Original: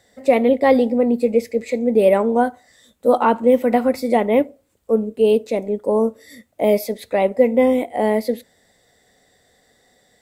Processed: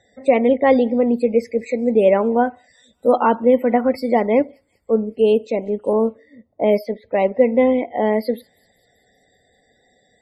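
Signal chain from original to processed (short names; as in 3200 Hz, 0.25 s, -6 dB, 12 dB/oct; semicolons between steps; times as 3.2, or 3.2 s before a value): loudest bins only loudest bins 64; thin delay 0.193 s, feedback 58%, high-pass 4400 Hz, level -19.5 dB; 5.93–7.91 low-pass opened by the level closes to 620 Hz, open at -10.5 dBFS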